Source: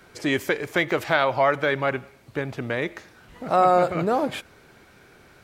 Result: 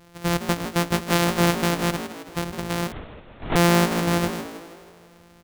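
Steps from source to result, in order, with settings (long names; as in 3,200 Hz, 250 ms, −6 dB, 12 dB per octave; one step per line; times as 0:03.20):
samples sorted by size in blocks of 256 samples
echo with shifted repeats 160 ms, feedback 52%, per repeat +54 Hz, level −11 dB
0:02.92–0:03.56: linear-prediction vocoder at 8 kHz whisper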